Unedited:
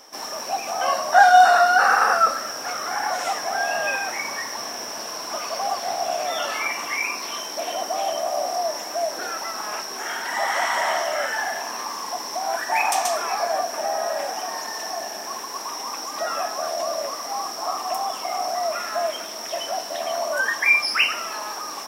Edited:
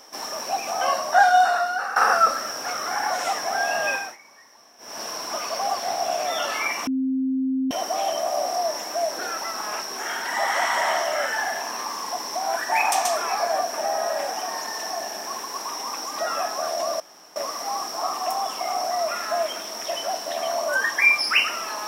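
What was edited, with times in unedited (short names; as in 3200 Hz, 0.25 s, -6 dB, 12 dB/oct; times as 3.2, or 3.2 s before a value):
0.81–1.96 fade out, to -14.5 dB
3.92–5.03 dip -21.5 dB, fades 0.25 s
6.87–7.71 bleep 263 Hz -20.5 dBFS
17 insert room tone 0.36 s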